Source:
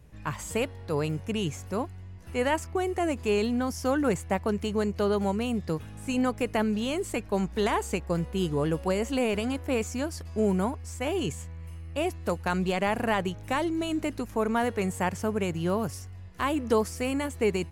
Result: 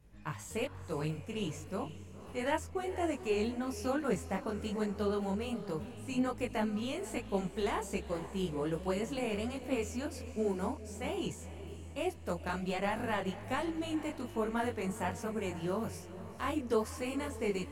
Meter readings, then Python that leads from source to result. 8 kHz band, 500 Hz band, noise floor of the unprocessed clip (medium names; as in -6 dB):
-7.5 dB, -7.0 dB, -43 dBFS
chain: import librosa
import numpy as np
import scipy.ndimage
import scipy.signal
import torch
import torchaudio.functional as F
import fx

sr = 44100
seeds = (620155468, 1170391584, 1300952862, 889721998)

y = fx.echo_diffused(x, sr, ms=485, feedback_pct=41, wet_db=-13)
y = fx.detune_double(y, sr, cents=43)
y = y * 10.0 ** (-4.0 / 20.0)